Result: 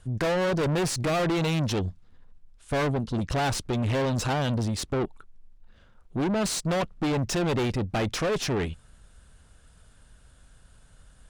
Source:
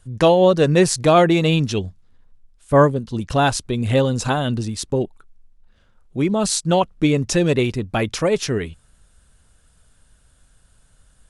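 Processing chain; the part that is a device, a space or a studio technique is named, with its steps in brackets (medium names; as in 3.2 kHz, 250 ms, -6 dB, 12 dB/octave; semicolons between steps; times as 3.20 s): tube preamp driven hard (valve stage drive 27 dB, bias 0.4; treble shelf 6.2 kHz -7.5 dB); trim +3.5 dB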